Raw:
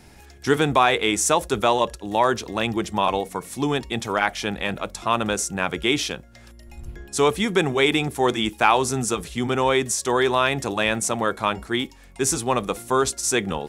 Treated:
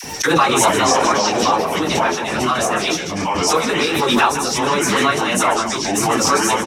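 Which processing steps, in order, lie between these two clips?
multi-tap echo 41/45/141/305 ms -4/-10/-18.5/-8.5 dB; speed mistake 44.1 kHz file played as 48 kHz; high-pass 190 Hz 6 dB/octave; dynamic bell 1.2 kHz, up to +5 dB, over -33 dBFS, Q 2.2; ever faster or slower copies 261 ms, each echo -4 st, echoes 2; plain phase-vocoder stretch 0.53×; phase dispersion lows, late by 42 ms, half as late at 700 Hz; gate with hold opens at -27 dBFS; peaking EQ 5.6 kHz +10.5 dB 0.26 oct; swell ahead of each attack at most 30 dB/s; trim +2 dB

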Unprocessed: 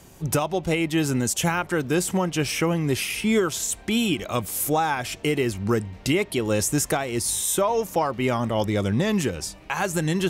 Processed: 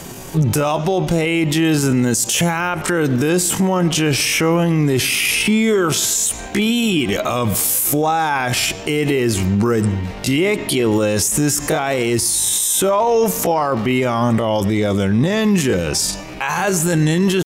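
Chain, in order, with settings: peaking EQ 61 Hz -9.5 dB 1.1 oct; tempo 0.59×; on a send at -24 dB: reverberation RT60 0.70 s, pre-delay 76 ms; on the sum: loudness maximiser +25 dB; trim -7.5 dB

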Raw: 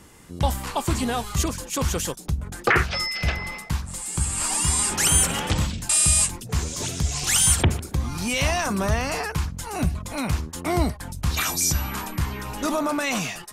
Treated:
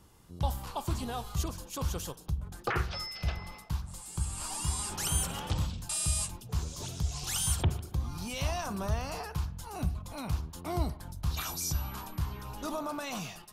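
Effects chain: graphic EQ 250/500/2000/8000 Hz -6/-4/-11/-8 dB; spring tank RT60 1 s, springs 39 ms, DRR 16 dB; trim -6.5 dB

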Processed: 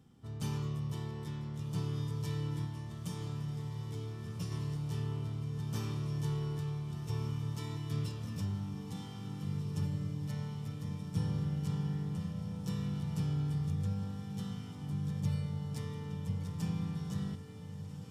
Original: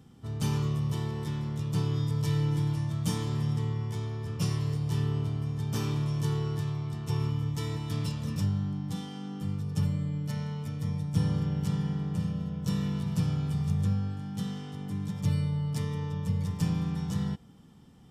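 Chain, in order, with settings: 2.65–4.52 s: compression, threshold -29 dBFS, peak gain reduction 6 dB; echo that smears into a reverb 1529 ms, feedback 68%, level -9 dB; trim -7.5 dB

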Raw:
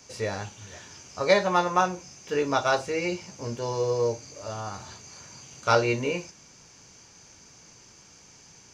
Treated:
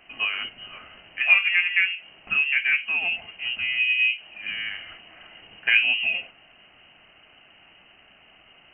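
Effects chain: low-pass that closes with the level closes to 1 kHz, closed at -23 dBFS; frequency inversion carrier 3 kHz; trim +3.5 dB

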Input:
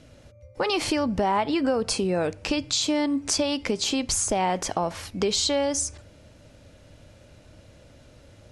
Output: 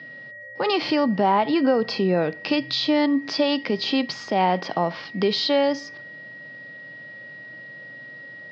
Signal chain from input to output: whistle 1.9 kHz -42 dBFS; harmonic-percussive split harmonic +5 dB; Chebyshev band-pass 130–5000 Hz, order 5

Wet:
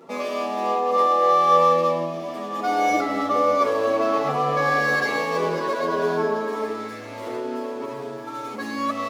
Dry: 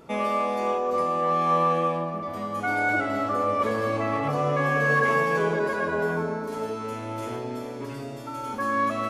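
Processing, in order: median filter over 15 samples; high-pass 270 Hz 12 dB/octave; treble shelf 5.7 kHz -4 dB; band-stop 1.5 kHz, Q 8.8; thinning echo 665 ms, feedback 67%, high-pass 800 Hz, level -13 dB; endless flanger 8.3 ms -0.54 Hz; trim +8 dB

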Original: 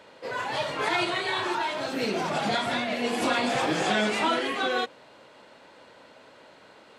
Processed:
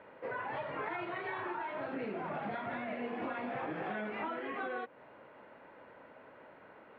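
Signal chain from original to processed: low-pass 2.2 kHz 24 dB/octave; compression, threshold -33 dBFS, peak gain reduction 11.5 dB; trim -3 dB

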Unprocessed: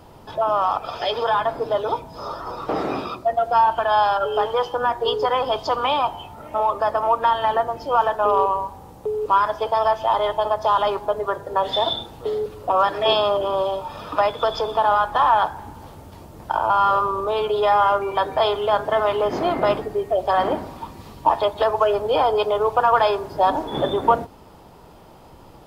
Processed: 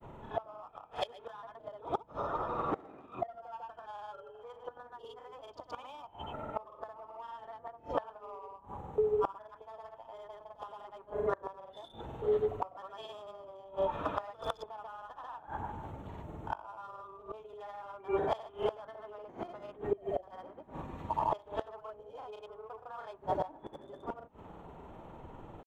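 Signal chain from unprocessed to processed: local Wiener filter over 9 samples; pre-echo 64 ms -12 dB; in parallel at -6 dB: saturation -13 dBFS, distortion -16 dB; on the sum: granulator 100 ms, grains 20 per s, pitch spread up and down by 0 st; inverted gate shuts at -14 dBFS, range -24 dB; trim -6 dB

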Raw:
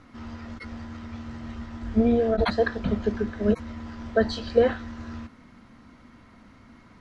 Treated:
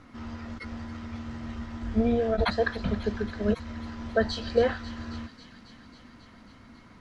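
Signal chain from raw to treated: dynamic bell 310 Hz, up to -5 dB, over -32 dBFS, Q 0.73; on a send: feedback echo behind a high-pass 272 ms, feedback 75%, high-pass 2.7 kHz, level -11 dB

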